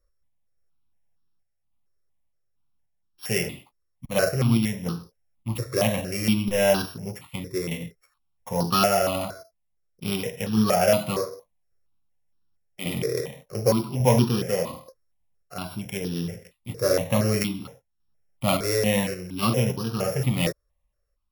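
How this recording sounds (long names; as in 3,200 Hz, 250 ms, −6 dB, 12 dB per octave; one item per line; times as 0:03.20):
a buzz of ramps at a fixed pitch in blocks of 8 samples
sample-and-hold tremolo
notches that jump at a steady rate 4.3 Hz 820–2,100 Hz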